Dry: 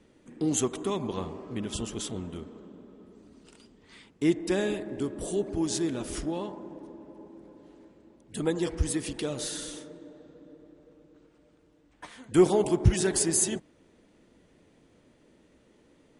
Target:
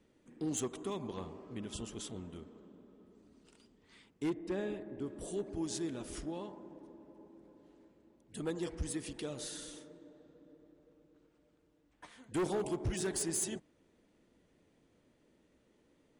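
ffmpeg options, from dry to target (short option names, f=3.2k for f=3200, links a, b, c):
-filter_complex "[0:a]volume=20.5dB,asoftclip=hard,volume=-20.5dB,asplit=3[a][b][c];[a]afade=t=out:st=4.29:d=0.02[d];[b]lowpass=f=1.8k:p=1,afade=t=in:st=4.29:d=0.02,afade=t=out:st=5.06:d=0.02[e];[c]afade=t=in:st=5.06:d=0.02[f];[d][e][f]amix=inputs=3:normalize=0,volume=-9dB"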